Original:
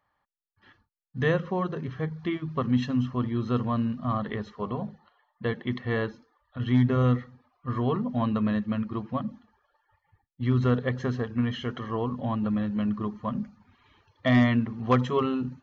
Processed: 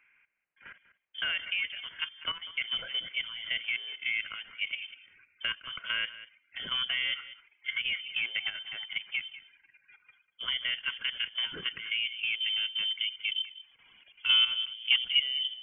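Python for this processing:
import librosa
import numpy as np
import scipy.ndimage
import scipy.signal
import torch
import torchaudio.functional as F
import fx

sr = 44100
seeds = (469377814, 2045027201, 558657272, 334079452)

y = fx.filter_sweep_bandpass(x, sr, from_hz=1200.0, to_hz=420.0, start_s=10.51, end_s=13.99, q=0.84)
y = fx.level_steps(y, sr, step_db=12)
y = y + 10.0 ** (-17.5 / 20.0) * np.pad(y, (int(194 * sr / 1000.0), 0))[:len(y)]
y = fx.freq_invert(y, sr, carrier_hz=3300)
y = fx.band_squash(y, sr, depth_pct=40)
y = y * librosa.db_to_amplitude(5.5)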